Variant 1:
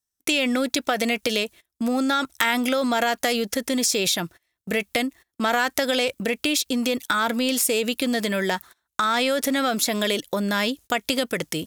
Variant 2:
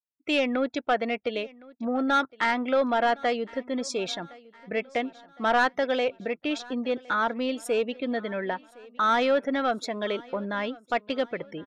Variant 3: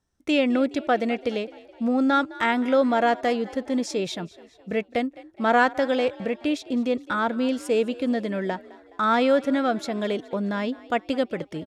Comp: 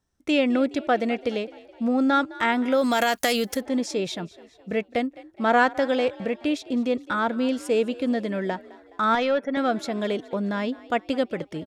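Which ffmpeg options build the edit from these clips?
-filter_complex "[2:a]asplit=3[s0][s1][s2];[s0]atrim=end=2.92[s3];[0:a]atrim=start=2.68:end=3.68[s4];[s1]atrim=start=3.44:end=9.152[s5];[1:a]atrim=start=9.148:end=9.572[s6];[s2]atrim=start=9.568[s7];[s3][s4]acrossfade=d=0.24:c1=tri:c2=tri[s8];[s8][s5]acrossfade=d=0.24:c1=tri:c2=tri[s9];[s9][s6]acrossfade=d=0.004:c1=hsin:c2=hsin[s10];[s10][s7]acrossfade=d=0.004:c1=hsin:c2=hsin"

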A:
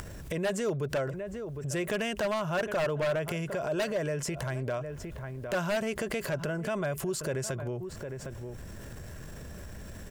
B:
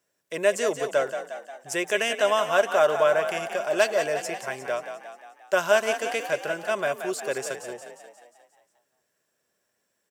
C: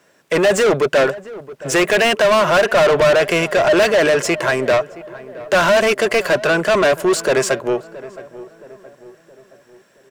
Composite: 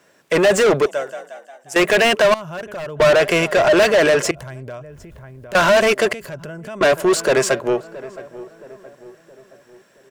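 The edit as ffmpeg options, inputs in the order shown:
-filter_complex "[0:a]asplit=3[s0][s1][s2];[2:a]asplit=5[s3][s4][s5][s6][s7];[s3]atrim=end=0.862[s8];[1:a]atrim=start=0.858:end=1.762[s9];[s4]atrim=start=1.758:end=2.342[s10];[s0]atrim=start=2.338:end=3.002[s11];[s5]atrim=start=2.998:end=4.312[s12];[s1]atrim=start=4.308:end=5.552[s13];[s6]atrim=start=5.548:end=6.132[s14];[s2]atrim=start=6.128:end=6.812[s15];[s7]atrim=start=6.808[s16];[s8][s9]acrossfade=d=0.004:c1=hsin:c2=hsin[s17];[s17][s10]acrossfade=d=0.004:c1=hsin:c2=hsin[s18];[s18][s11]acrossfade=d=0.004:c1=hsin:c2=hsin[s19];[s19][s12]acrossfade=d=0.004:c1=hsin:c2=hsin[s20];[s20][s13]acrossfade=d=0.004:c1=hsin:c2=hsin[s21];[s21][s14]acrossfade=d=0.004:c1=hsin:c2=hsin[s22];[s22][s15]acrossfade=d=0.004:c1=hsin:c2=hsin[s23];[s23][s16]acrossfade=d=0.004:c1=hsin:c2=hsin"

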